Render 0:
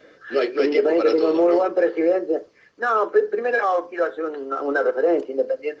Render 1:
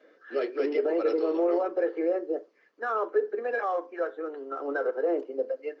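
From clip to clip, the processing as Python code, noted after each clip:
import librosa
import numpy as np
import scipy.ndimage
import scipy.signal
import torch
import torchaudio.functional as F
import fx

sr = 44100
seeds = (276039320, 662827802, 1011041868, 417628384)

y = scipy.signal.sosfilt(scipy.signal.butter(4, 250.0, 'highpass', fs=sr, output='sos'), x)
y = fx.high_shelf(y, sr, hz=2700.0, db=-9.5)
y = F.gain(torch.from_numpy(y), -7.5).numpy()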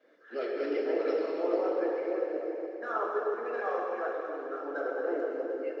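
y = fx.rev_plate(x, sr, seeds[0], rt60_s=3.1, hf_ratio=0.95, predelay_ms=0, drr_db=-4.0)
y = fx.hpss(y, sr, part='harmonic', gain_db=-8)
y = F.gain(torch.from_numpy(y), -3.0).numpy()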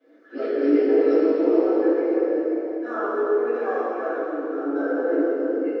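y = fx.peak_eq(x, sr, hz=290.0, db=11.0, octaves=0.98)
y = fx.rev_fdn(y, sr, rt60_s=1.3, lf_ratio=1.35, hf_ratio=0.7, size_ms=62.0, drr_db=-9.5)
y = F.gain(torch.from_numpy(y), -6.0).numpy()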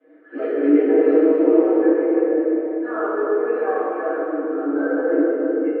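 y = scipy.signal.sosfilt(scipy.signal.butter(4, 2600.0, 'lowpass', fs=sr, output='sos'), x)
y = y + 0.54 * np.pad(y, (int(6.4 * sr / 1000.0), 0))[:len(y)]
y = F.gain(torch.from_numpy(y), 1.5).numpy()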